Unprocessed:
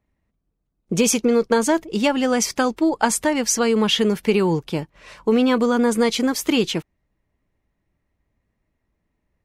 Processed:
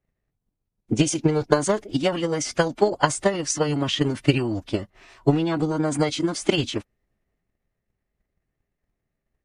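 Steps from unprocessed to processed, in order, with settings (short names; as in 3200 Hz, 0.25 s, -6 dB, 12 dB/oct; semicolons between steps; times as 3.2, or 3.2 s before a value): formant-preserving pitch shift -7.5 st; transient shaper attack +10 dB, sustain +6 dB; gain -7 dB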